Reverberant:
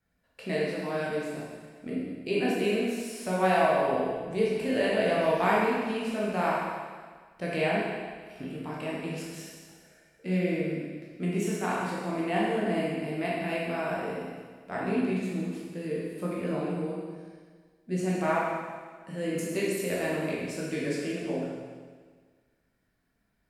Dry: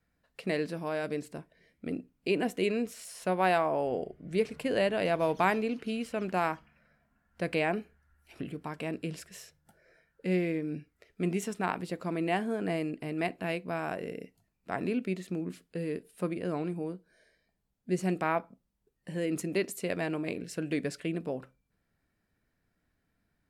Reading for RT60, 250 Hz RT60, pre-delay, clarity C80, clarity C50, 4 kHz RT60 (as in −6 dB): 1.6 s, 1.6 s, 14 ms, 1.5 dB, −1.5 dB, 1.6 s